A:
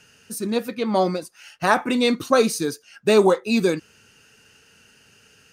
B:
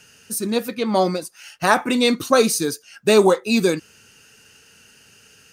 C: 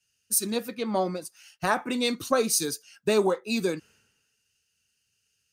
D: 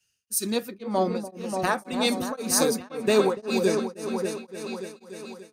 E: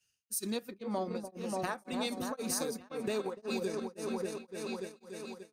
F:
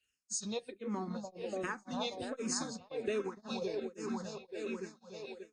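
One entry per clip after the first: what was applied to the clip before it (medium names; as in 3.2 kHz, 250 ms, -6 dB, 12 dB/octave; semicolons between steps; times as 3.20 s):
treble shelf 4.9 kHz +6.5 dB; trim +1.5 dB
compression 2.5:1, threshold -25 dBFS, peak gain reduction 11 dB; three bands expanded up and down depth 100%; trim -2.5 dB
delay with an opening low-pass 292 ms, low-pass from 750 Hz, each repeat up 1 oct, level -3 dB; tremolo of two beating tones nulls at 1.9 Hz; trim +2.5 dB
compression 6:1, threshold -27 dBFS, peak gain reduction 12 dB; transient shaper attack -2 dB, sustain -7 dB; trim -4 dB
knee-point frequency compression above 3.5 kHz 1.5:1; barber-pole phaser -1.3 Hz; trim +1 dB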